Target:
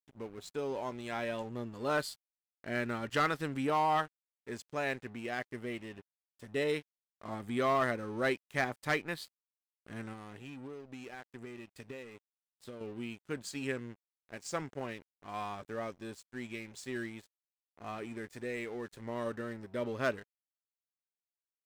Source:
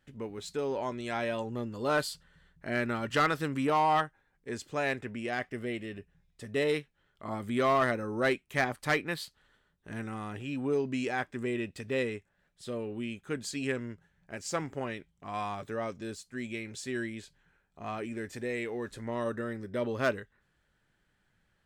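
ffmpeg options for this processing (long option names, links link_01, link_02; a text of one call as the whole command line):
ffmpeg -i in.wav -filter_complex "[0:a]asettb=1/sr,asplit=3[link_01][link_02][link_03];[link_01]atrim=end=10.124[link_04];[link_02]atrim=start=10.12:end=12.81,asetpts=PTS-STARTPTS,afade=type=in:duration=0.004:curve=qsin,afade=type=out:start_time=2.686:duration=0.004:curve=qsin,acompressor=threshold=-38dB:ratio=8[link_05];[link_03]atrim=start=12.806[link_06];[link_04][link_05]acrossfade=duration=0.004:curve1=hsin:curve2=qsin[link_07];[link_07][link_06]acrossfade=duration=0.004:curve1=qsin:curve2=hsin,aeval=exprs='sgn(val(0))*max(abs(val(0))-0.00335,0)':channel_layout=same,volume=-3dB" out.wav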